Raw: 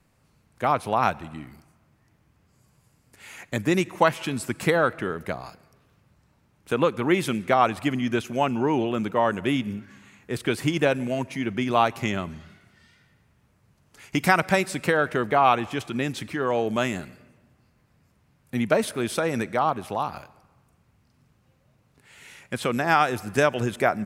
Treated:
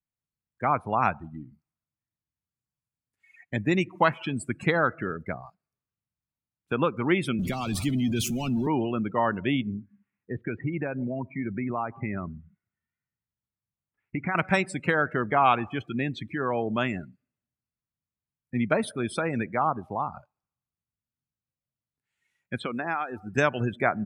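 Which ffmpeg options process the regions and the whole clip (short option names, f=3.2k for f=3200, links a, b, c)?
-filter_complex "[0:a]asettb=1/sr,asplit=3[a][b][c];[a]atrim=end=7.394[d];[b]atrim=start=7.39:end=8.67,asetpts=PTS-STARTPTS,afade=t=in:d=0.004:c=qsin,afade=t=out:st=1.276:d=0.004:c=qsin,aeval=exprs='val(0)+0.5*0.0794*sgn(val(0))':c=same,highshelf=f=4k:g=3,acrossover=split=290|3000[e][f][g];[f]acompressor=threshold=-58dB:ratio=1.5:attack=3.2:release=140:knee=2.83:detection=peak[h];[e][h][g]amix=inputs=3:normalize=0[i];[c]atrim=start=8.666[j];[d][i]acrossfade=d=0.004:c1=hsin:c2=qsin[k];[k][j]acrossfade=d=0.004:c1=qsin:c2=hsin,asettb=1/sr,asplit=3[l][m][n];[l]atrim=end=9.744[o];[m]atrim=start=9.74:end=14.35,asetpts=PTS-STARTPTS,afade=t=in:d=0.004:c=qsin,afade=t=out:st=4.606:d=0.004:c=qsin,lowpass=f=2.4k:w=0.5412,lowpass=f=2.4k:w=1.3066,acompressor=threshold=-24dB:ratio=3:attack=3.2:release=140:knee=1:detection=peak[p];[n]atrim=start=14.346[q];[o][p]acrossfade=d=0.004:c1=hsin:c2=qsin[r];[r][q]acrossfade=d=0.004:c1=qsin:c2=hsin,asettb=1/sr,asplit=3[s][t][u];[s]atrim=end=22.624[v];[t]atrim=start=22.62:end=23.33,asetpts=PTS-STARTPTS,afade=t=in:d=0.004:c=qsin,afade=t=out:st=0.706:d=0.004:c=qsin,equalizer=f=130:t=o:w=0.61:g=-10,acrossover=split=1500|3900[w][x][y];[w]acompressor=threshold=-26dB:ratio=4[z];[x]acompressor=threshold=-36dB:ratio=4[aa];[y]acompressor=threshold=-46dB:ratio=4[ab];[z][aa][ab]amix=inputs=3:normalize=0[ac];[u]atrim=start=23.326[ad];[v][ac]acrossfade=d=0.004:c1=hsin:c2=qsin[ae];[ae][ad]acrossfade=d=0.004:c1=qsin:c2=hsin,afftdn=nr=32:nf=-33,equalizer=f=510:w=1.1:g=-5"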